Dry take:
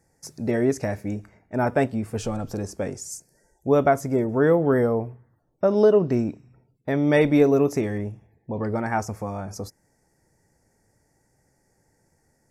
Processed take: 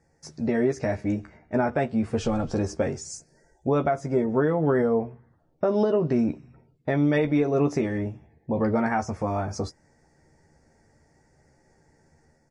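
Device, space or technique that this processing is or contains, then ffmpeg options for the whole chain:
low-bitrate web radio: -filter_complex "[0:a]lowpass=5200,asplit=2[link_01][link_02];[link_02]adelay=13,volume=-5.5dB[link_03];[link_01][link_03]amix=inputs=2:normalize=0,dynaudnorm=framelen=720:gausssize=3:maxgain=5dB,alimiter=limit=-13.5dB:level=0:latency=1:release=349" -ar 32000 -c:a libmp3lame -b:a 48k

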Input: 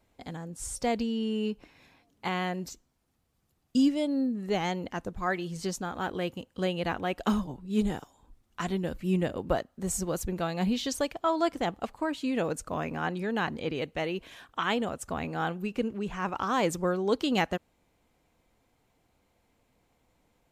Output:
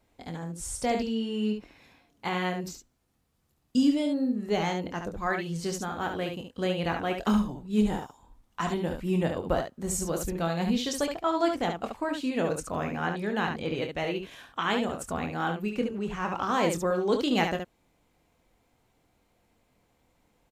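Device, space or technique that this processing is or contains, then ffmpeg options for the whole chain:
slapback doubling: -filter_complex "[0:a]asplit=3[link_01][link_02][link_03];[link_02]adelay=24,volume=-8dB[link_04];[link_03]adelay=71,volume=-6dB[link_05];[link_01][link_04][link_05]amix=inputs=3:normalize=0,asettb=1/sr,asplit=3[link_06][link_07][link_08];[link_06]atrim=end=7.864[link_09];[link_07]atrim=start=7.86:end=9.38,asetpts=PTS-STARTPTS,afade=type=in:duration=0.004:curve=qsin,afade=type=out:start_time=1.516:duration=0.004:curve=qsin,equalizer=frequency=910:width_type=o:width=0.58:gain=6[link_10];[link_08]atrim=start=9.376[link_11];[link_09][link_10]acrossfade=duration=0.004:curve1=hsin:curve2=qsin[link_12];[link_12][link_11]acrossfade=duration=0.004:curve1=qsin:curve2=hsin"

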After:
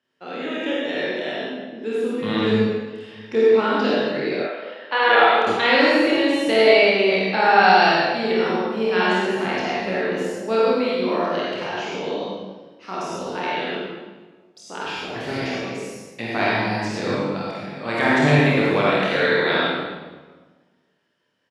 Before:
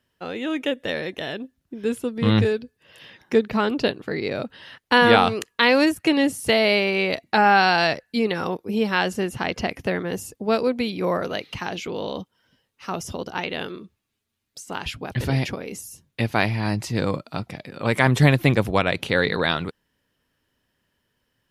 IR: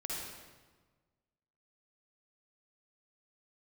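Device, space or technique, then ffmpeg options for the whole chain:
supermarket ceiling speaker: -filter_complex "[0:a]highpass=230,lowpass=5800[link_01];[1:a]atrim=start_sample=2205[link_02];[link_01][link_02]afir=irnorm=-1:irlink=0,asettb=1/sr,asplit=3[link_03][link_04][link_05];[link_03]atrim=end=4.434[link_06];[link_04]atrim=start=4.43:end=5.47,asetpts=PTS-STARTPTS,afade=type=in:duration=0.004:curve=qsin,afade=type=out:start_time=1.036:duration=0.004:curve=qsin,acrossover=split=410 3800:gain=0.1 1 0.178[link_07][link_08][link_09];[link_07][link_08][link_09]amix=inputs=3:normalize=0[link_10];[link_05]atrim=start=5.466[link_11];[link_06][link_10]acrossfade=duration=0.004:curve1=hsin:curve2=qsin[link_12];[link_12][link_11]acrossfade=duration=0.004:curve1=qsin:curve2=hsin,aecho=1:1:27|47:0.668|0.562,volume=-1dB"

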